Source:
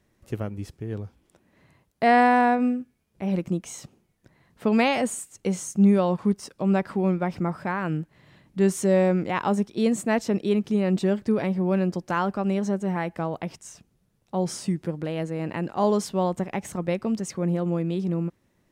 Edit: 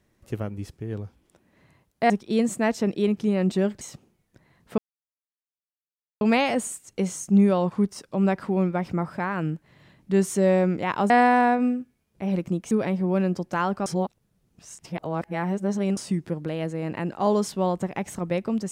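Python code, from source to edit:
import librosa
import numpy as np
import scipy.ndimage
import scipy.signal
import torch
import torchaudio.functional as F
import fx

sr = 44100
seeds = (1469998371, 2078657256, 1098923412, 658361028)

y = fx.edit(x, sr, fx.swap(start_s=2.1, length_s=1.61, other_s=9.57, other_length_s=1.71),
    fx.insert_silence(at_s=4.68, length_s=1.43),
    fx.reverse_span(start_s=12.43, length_s=2.11), tone=tone)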